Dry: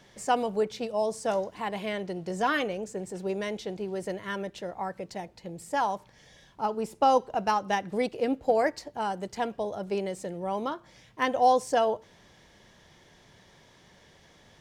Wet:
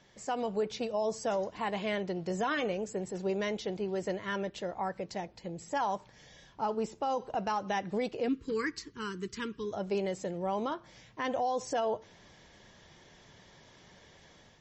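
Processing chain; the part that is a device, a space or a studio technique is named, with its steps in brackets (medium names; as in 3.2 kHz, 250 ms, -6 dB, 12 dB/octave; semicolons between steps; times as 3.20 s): 8.28–9.73 s: Chebyshev band-stop 420–1100 Hz, order 3; low-bitrate web radio (level rider gain up to 5.5 dB; peak limiter -17.5 dBFS, peak gain reduction 11.5 dB; trim -5.5 dB; MP3 32 kbps 32 kHz)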